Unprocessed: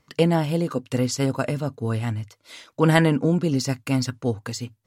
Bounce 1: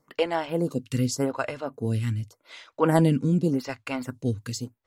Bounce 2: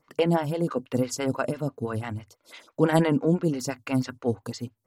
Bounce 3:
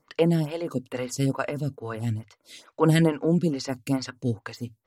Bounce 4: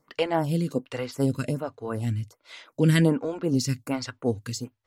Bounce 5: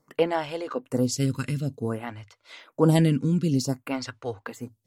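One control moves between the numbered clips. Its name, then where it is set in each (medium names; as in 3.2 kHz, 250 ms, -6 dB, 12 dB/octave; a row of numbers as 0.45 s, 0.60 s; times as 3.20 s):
lamp-driven phase shifter, rate: 0.86 Hz, 6 Hz, 2.3 Hz, 1.3 Hz, 0.54 Hz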